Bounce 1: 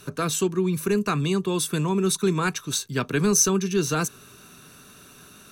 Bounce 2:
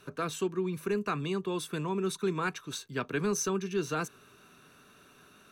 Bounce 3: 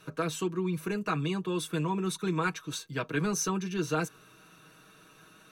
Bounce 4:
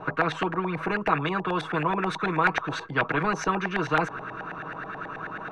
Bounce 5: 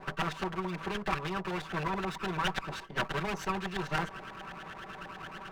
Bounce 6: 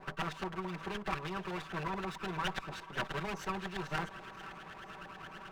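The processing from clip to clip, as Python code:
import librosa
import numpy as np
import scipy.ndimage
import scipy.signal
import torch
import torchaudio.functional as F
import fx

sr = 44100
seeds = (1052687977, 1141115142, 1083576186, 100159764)

y1 = fx.bass_treble(x, sr, bass_db=-6, treble_db=-10)
y1 = y1 * 10.0 ** (-6.0 / 20.0)
y2 = y1 + 0.71 * np.pad(y1, (int(6.3 * sr / 1000.0), 0))[:len(y1)]
y3 = fx.filter_lfo_lowpass(y2, sr, shape='saw_up', hz=9.3, low_hz=740.0, high_hz=1800.0, q=5.9)
y3 = fx.spectral_comp(y3, sr, ratio=2.0)
y4 = fx.lower_of_two(y3, sr, delay_ms=5.2)
y4 = y4 * 10.0 ** (-6.5 / 20.0)
y5 = fx.echo_thinned(y4, sr, ms=486, feedback_pct=61, hz=420.0, wet_db=-16.0)
y5 = y5 * 10.0 ** (-4.5 / 20.0)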